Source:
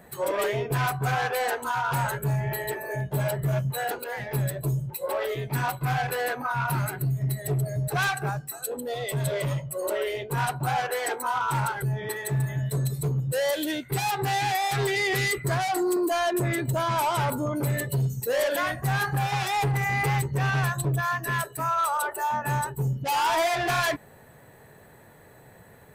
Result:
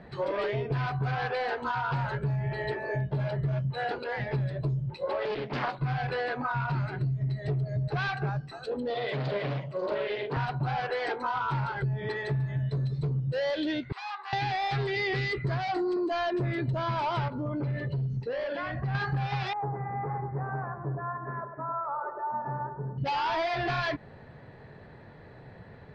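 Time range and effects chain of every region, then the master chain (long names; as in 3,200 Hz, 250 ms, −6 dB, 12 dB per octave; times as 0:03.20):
0:05.25–0:05.79: high-pass filter 190 Hz 24 dB per octave + highs frequency-modulated by the lows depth 0.87 ms
0:08.90–0:10.37: band-pass filter 230–5,400 Hz + double-tracking delay 44 ms −5 dB + highs frequency-modulated by the lows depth 0.38 ms
0:13.92–0:14.33: four-pole ladder high-pass 1,000 Hz, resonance 65% + parametric band 1,400 Hz −3.5 dB 0.27 octaves
0:17.28–0:18.95: notch filter 3,700 Hz, Q 16 + downward compressor 4 to 1, threshold −31 dBFS + high-frequency loss of the air 140 metres
0:19.53–0:22.98: Gaussian smoothing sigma 8.7 samples + spectral tilt +4.5 dB per octave + delay that swaps between a low-pass and a high-pass 101 ms, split 1,300 Hz, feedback 55%, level −6 dB
whole clip: Chebyshev low-pass filter 4,800 Hz, order 4; low-shelf EQ 330 Hz +7 dB; downward compressor, threshold −27 dBFS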